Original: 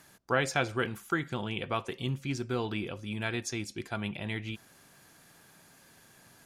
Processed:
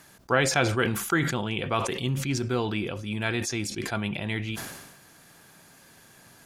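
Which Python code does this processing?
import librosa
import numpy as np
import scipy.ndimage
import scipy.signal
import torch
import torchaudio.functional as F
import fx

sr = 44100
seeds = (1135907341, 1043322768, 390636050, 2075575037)

y = fx.sustainer(x, sr, db_per_s=49.0)
y = y * 10.0 ** (4.5 / 20.0)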